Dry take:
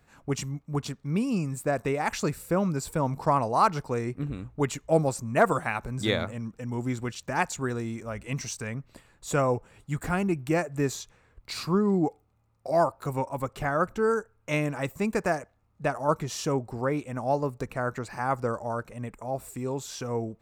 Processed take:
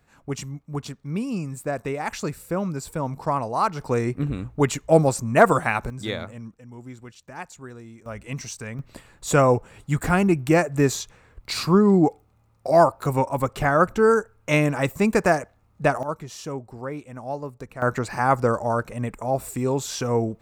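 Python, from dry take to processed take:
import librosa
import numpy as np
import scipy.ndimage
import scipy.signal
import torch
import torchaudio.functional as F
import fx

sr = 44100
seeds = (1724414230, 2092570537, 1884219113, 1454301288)

y = fx.gain(x, sr, db=fx.steps((0.0, -0.5), (3.81, 6.5), (5.9, -3.0), (6.54, -10.0), (8.06, 0.0), (8.79, 7.5), (16.03, -4.5), (17.82, 8.0)))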